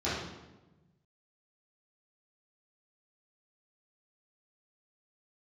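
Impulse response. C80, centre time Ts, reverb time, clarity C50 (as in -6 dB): 3.0 dB, 78 ms, 1.1 s, -0.5 dB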